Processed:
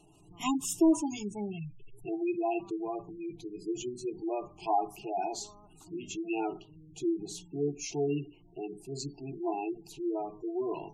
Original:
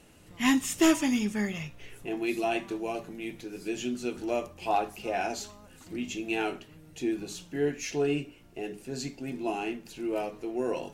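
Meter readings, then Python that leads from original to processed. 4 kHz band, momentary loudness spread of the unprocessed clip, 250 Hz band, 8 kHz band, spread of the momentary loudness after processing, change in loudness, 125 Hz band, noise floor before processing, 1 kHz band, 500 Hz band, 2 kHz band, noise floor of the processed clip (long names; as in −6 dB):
−7.5 dB, 13 LU, −2.5 dB, −3.0 dB, 11 LU, −3.0 dB, −1.5 dB, −54 dBFS, −1.0 dB, −2.5 dB, −13.0 dB, −58 dBFS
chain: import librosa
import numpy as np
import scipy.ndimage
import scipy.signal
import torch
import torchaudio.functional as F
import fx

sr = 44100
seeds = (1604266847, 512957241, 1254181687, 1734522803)

y = fx.fixed_phaser(x, sr, hz=350.0, stages=8)
y = fx.spec_gate(y, sr, threshold_db=-20, keep='strong')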